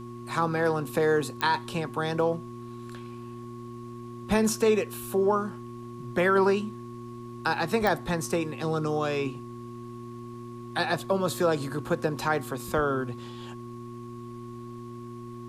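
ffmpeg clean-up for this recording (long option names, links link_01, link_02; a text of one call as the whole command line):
ffmpeg -i in.wav -af "adeclick=threshold=4,bandreject=frequency=118.9:width_type=h:width=4,bandreject=frequency=237.8:width_type=h:width=4,bandreject=frequency=356.7:width_type=h:width=4,bandreject=frequency=1100:width=30,agate=range=-21dB:threshold=-33dB" out.wav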